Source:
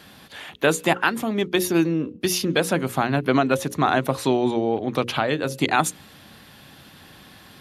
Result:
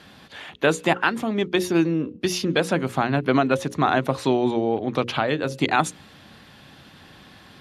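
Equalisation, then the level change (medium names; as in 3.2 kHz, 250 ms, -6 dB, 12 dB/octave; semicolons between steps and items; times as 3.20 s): distance through air 53 m; 0.0 dB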